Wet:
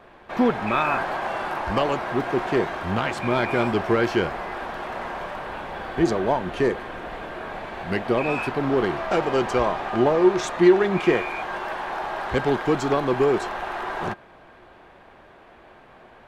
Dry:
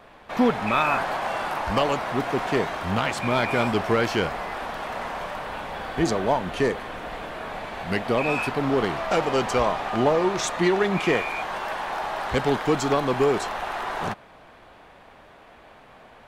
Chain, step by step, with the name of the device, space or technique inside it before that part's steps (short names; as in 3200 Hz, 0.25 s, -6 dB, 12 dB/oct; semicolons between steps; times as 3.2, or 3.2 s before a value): inside a helmet (high shelf 4100 Hz -7.5 dB; small resonant body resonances 360/1600 Hz, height 9 dB, ringing for 95 ms)